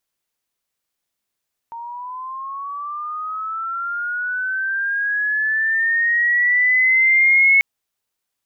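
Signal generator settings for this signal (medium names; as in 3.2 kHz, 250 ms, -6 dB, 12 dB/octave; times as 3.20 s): sweep linear 920 Hz -> 2.2 kHz -29 dBFS -> -9.5 dBFS 5.89 s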